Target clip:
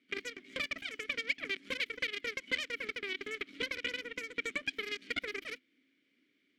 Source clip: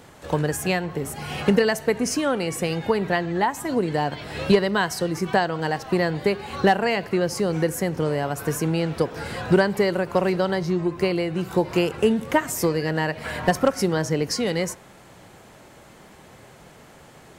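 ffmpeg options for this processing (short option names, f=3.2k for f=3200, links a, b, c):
-filter_complex "[0:a]asetrate=116424,aresample=44100,aeval=exprs='0.447*(cos(1*acos(clip(val(0)/0.447,-1,1)))-cos(1*PI/2))+0.141*(cos(4*acos(clip(val(0)/0.447,-1,1)))-cos(4*PI/2))+0.0501*(cos(7*acos(clip(val(0)/0.447,-1,1)))-cos(7*PI/2))':c=same,asplit=3[a][b][c];[a]bandpass=f=270:t=q:w=8,volume=0dB[d];[b]bandpass=f=2.29k:t=q:w=8,volume=-6dB[e];[c]bandpass=f=3.01k:t=q:w=8,volume=-9dB[f];[d][e][f]amix=inputs=3:normalize=0"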